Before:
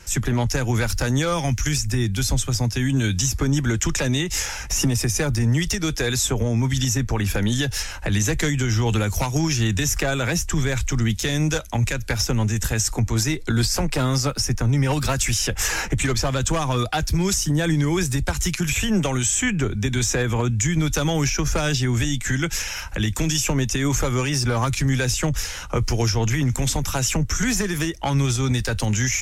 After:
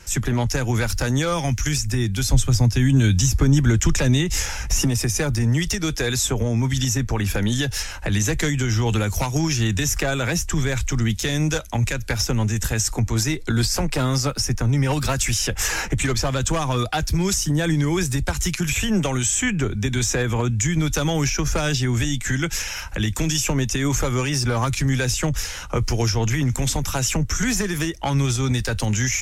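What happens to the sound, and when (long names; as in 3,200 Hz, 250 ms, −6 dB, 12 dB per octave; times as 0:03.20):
0:02.33–0:04.81: low-shelf EQ 210 Hz +7.5 dB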